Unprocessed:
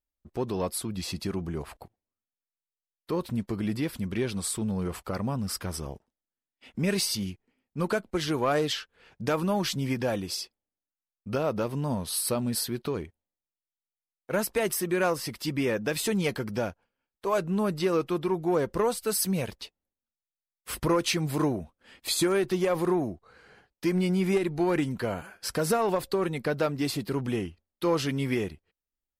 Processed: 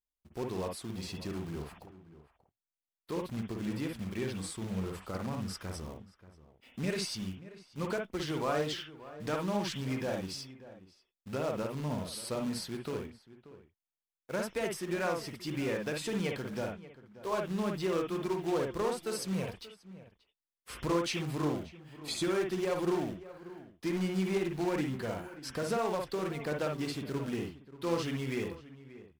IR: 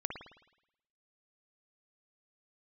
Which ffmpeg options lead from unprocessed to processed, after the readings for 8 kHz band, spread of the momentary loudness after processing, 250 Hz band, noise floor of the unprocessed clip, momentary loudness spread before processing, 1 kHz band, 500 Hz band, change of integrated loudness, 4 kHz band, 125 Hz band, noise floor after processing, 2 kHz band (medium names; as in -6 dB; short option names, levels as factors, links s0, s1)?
-10.5 dB, 16 LU, -6.0 dB, under -85 dBFS, 10 LU, -6.0 dB, -6.0 dB, -6.5 dB, -7.0 dB, -6.0 dB, under -85 dBFS, -5.5 dB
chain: -filter_complex "[0:a]acrusher=bits=3:mode=log:mix=0:aa=0.000001,acrossover=split=8800[s0][s1];[s1]acompressor=threshold=0.00316:ratio=4:attack=1:release=60[s2];[s0][s2]amix=inputs=2:normalize=0,asplit=2[s3][s4];[s4]adelay=583.1,volume=0.158,highshelf=f=4000:g=-13.1[s5];[s3][s5]amix=inputs=2:normalize=0[s6];[1:a]atrim=start_sample=2205,atrim=end_sample=3969[s7];[s6][s7]afir=irnorm=-1:irlink=0,volume=0.447"